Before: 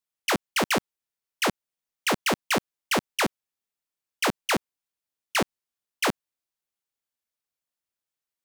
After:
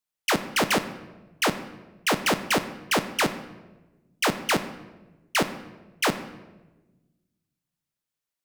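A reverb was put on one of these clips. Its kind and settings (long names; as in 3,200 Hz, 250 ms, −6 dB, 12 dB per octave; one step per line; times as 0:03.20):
rectangular room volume 650 cubic metres, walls mixed, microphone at 0.47 metres
level +1 dB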